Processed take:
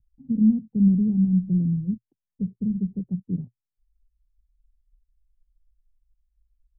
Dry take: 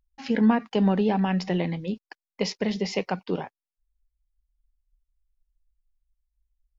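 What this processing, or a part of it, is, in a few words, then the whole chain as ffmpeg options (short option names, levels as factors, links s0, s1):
the neighbour's flat through the wall: -af "lowpass=f=200:w=0.5412,lowpass=f=200:w=1.3066,equalizer=f=120:t=o:w=0.49:g=7,volume=2.11"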